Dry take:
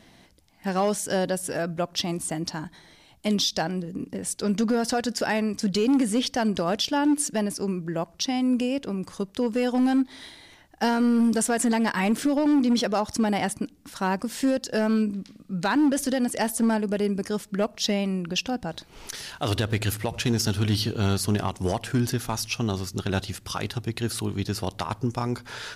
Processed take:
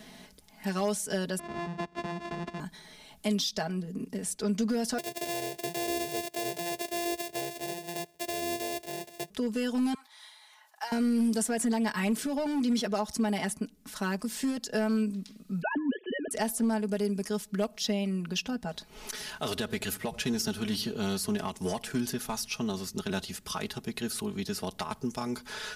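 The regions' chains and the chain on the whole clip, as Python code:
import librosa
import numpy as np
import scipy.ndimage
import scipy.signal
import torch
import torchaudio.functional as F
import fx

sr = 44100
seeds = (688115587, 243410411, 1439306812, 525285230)

y = fx.chain(x, sr, fx.sample_sort(block=128),
    fx.highpass(hz=45.0, slope=12),
    fx.spacing_loss(db_at_10k=29), at=(1.39, 2.6))
y = fx.chain(y, sr, fx.sample_sort(block=128),
    fx.highpass(hz=110.0, slope=24),
    fx.fixed_phaser(hz=500.0, stages=4), at=(4.98, 9.3))
y = fx.chain(y, sr, fx.ladder_highpass(hz=810.0, resonance_pct=50),
    fx.sustainer(db_per_s=130.0), at=(9.94, 10.92))
y = fx.chain(y, sr, fx.sine_speech(),
    fx.band_squash(depth_pct=40), at=(15.62, 16.31))
y = fx.high_shelf(y, sr, hz=8100.0, db=6.0)
y = y + 0.76 * np.pad(y, (int(4.7 * sr / 1000.0), 0))[:len(y)]
y = fx.band_squash(y, sr, depth_pct=40)
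y = y * librosa.db_to_amplitude(-8.5)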